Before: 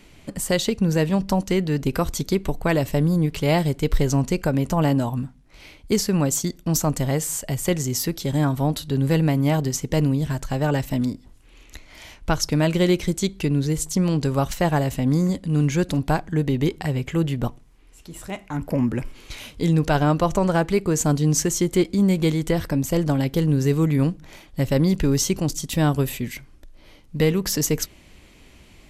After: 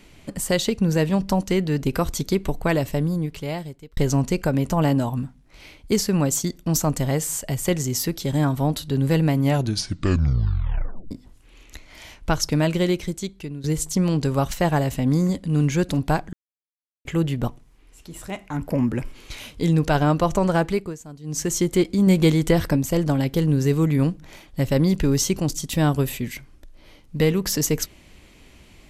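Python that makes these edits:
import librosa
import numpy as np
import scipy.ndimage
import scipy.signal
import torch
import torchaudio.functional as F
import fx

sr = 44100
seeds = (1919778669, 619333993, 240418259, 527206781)

y = fx.edit(x, sr, fx.fade_out_span(start_s=2.65, length_s=1.32),
    fx.tape_stop(start_s=9.42, length_s=1.69),
    fx.fade_out_to(start_s=12.54, length_s=1.1, floor_db=-15.5),
    fx.silence(start_s=16.33, length_s=0.72),
    fx.fade_down_up(start_s=20.66, length_s=0.89, db=-20.0, fade_s=0.32),
    fx.clip_gain(start_s=22.07, length_s=0.69, db=3.5), tone=tone)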